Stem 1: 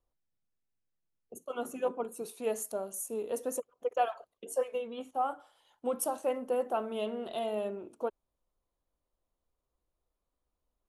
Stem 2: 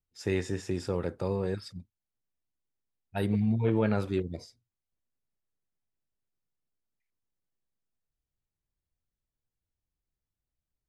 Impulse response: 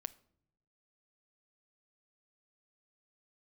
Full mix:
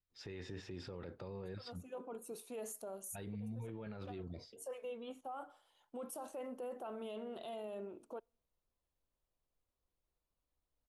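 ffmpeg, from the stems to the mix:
-filter_complex "[0:a]adelay=100,volume=-6.5dB,asplit=2[a][b];[b]volume=-22dB[c];[1:a]highshelf=f=5.8k:t=q:w=1.5:g=-12.5,acompressor=threshold=-29dB:ratio=6,volume=-5.5dB,asplit=2[d][e];[e]apad=whole_len=484358[f];[a][f]sidechaincompress=threshold=-56dB:ratio=8:attack=16:release=267[g];[2:a]atrim=start_sample=2205[h];[c][h]afir=irnorm=-1:irlink=0[i];[g][d][i]amix=inputs=3:normalize=0,alimiter=level_in=13.5dB:limit=-24dB:level=0:latency=1:release=21,volume=-13.5dB"

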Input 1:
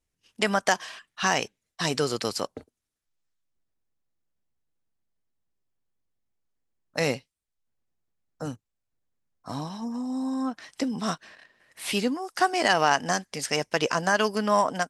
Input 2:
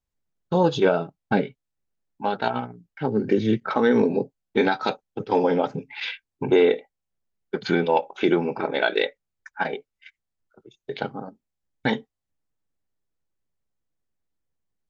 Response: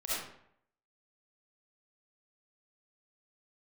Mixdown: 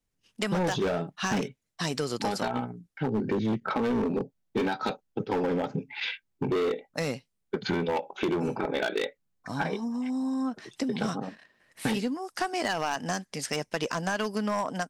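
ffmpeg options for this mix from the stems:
-filter_complex "[0:a]volume=-3dB[a];[1:a]volume=-1.5dB[b];[a][b]amix=inputs=2:normalize=0,equalizer=f=190:t=o:w=1.5:g=4.5,asoftclip=type=hard:threshold=-18dB,acompressor=threshold=-25dB:ratio=6"

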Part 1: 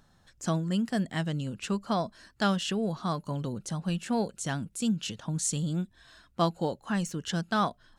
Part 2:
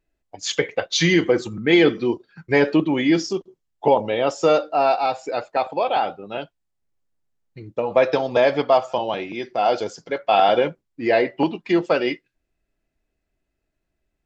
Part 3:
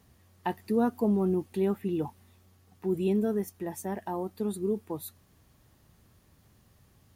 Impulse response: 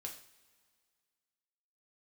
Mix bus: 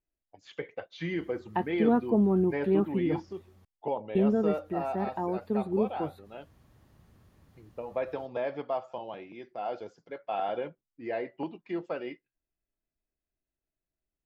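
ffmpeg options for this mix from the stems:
-filter_complex "[1:a]volume=-15dB[a];[2:a]adelay=1100,volume=2dB,asplit=3[b][c][d];[b]atrim=end=3.65,asetpts=PTS-STARTPTS,afade=t=out:st=3.646:d=0.004:c=hsin[e];[c]atrim=start=3.65:end=4.15,asetpts=PTS-STARTPTS,volume=0[f];[d]atrim=start=4.15,asetpts=PTS-STARTPTS,afade=t=in:d=0.004:c=hsin[g];[e][f][g]concat=n=3:v=0:a=1[h];[a][h]amix=inputs=2:normalize=0,acrossover=split=3500[i][j];[j]acompressor=threshold=-59dB:ratio=4:attack=1:release=60[k];[i][k]amix=inputs=2:normalize=0,highshelf=f=3.6k:g=-10.5"

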